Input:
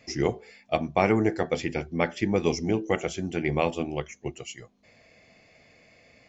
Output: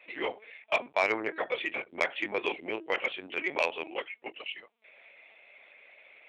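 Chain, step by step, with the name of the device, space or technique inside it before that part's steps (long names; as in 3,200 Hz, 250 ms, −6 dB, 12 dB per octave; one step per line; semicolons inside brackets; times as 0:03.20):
talking toy (linear-prediction vocoder at 8 kHz pitch kept; high-pass filter 620 Hz 12 dB per octave; parametric band 2,500 Hz +6.5 dB 0.58 octaves; soft clipping −14.5 dBFS, distortion −16 dB)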